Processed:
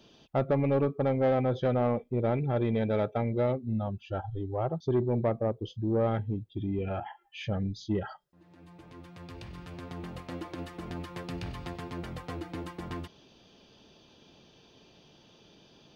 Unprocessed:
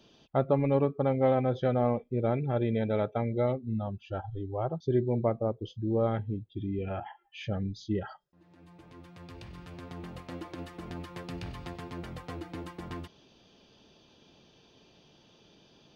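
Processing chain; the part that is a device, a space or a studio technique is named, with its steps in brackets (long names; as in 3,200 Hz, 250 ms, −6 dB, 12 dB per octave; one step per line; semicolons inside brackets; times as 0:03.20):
saturation between pre-emphasis and de-emphasis (high-shelf EQ 2,800 Hz +9 dB; soft clipping −20.5 dBFS, distortion −16 dB; high-shelf EQ 2,800 Hz −9 dB)
level +2 dB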